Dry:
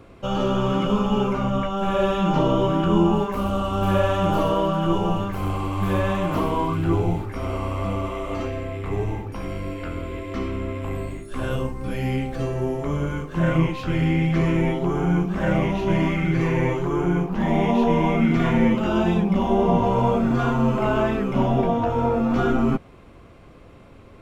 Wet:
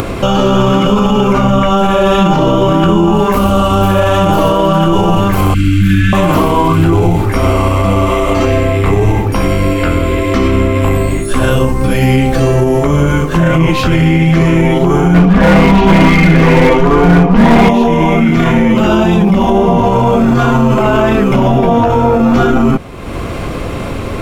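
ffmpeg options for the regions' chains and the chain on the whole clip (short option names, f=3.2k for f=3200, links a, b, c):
-filter_complex "[0:a]asettb=1/sr,asplit=3[a][b][c];[a]atrim=end=5.544[d];[b]atrim=start=5.54:end=6.13,asetpts=PTS-STARTPTS,afade=t=in:d=0.004:c=qsin,afade=t=out:st=0.586:d=0.004:c=qsin,asuperstop=centerf=680:order=20:qfactor=0.65,highshelf=f=6.1k:g=-10.5[e];[c]atrim=start=6.126[f];[d][e]acrossfade=d=0.004:c1=hsin:c2=qsin[g];[g][f]acrossfade=d=0.004:c1=qsin:c2=hsin,asettb=1/sr,asplit=3[h][i][j];[h]atrim=end=15.144[k];[i]atrim=start=15.14:end=17.69,asetpts=PTS-STARTPTS,afade=t=in:d=0.004:c=qsin,afade=t=out:st=2.546:d=0.004:c=qsin,lowpass=3.4k,aecho=1:1:4.2:0.81,atrim=end_sample=112455,volume=18.5dB,asoftclip=hard,volume=-18.5dB[l];[j]atrim=start=17.686[m];[k][l]acrossfade=d=0.004:c1=hsin:c2=qsin[n];[n][m]acrossfade=d=0.004:c1=qsin:c2=hsin,highshelf=f=5.6k:g=6.5,acompressor=mode=upward:threshold=-26dB:ratio=2.5,alimiter=level_in=19dB:limit=-1dB:release=50:level=0:latency=1,volume=-1dB"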